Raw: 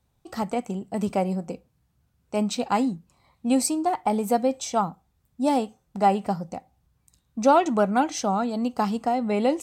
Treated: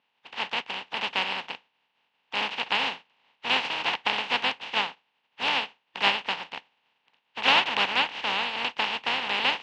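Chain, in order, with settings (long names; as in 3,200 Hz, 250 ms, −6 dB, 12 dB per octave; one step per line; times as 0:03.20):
compressing power law on the bin magnitudes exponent 0.11
pitch vibrato 3.3 Hz 44 cents
loudspeaker in its box 250–3,400 Hz, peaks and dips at 340 Hz −9 dB, 600 Hz −4 dB, 890 Hz +8 dB, 1,300 Hz −4 dB, 2,800 Hz +8 dB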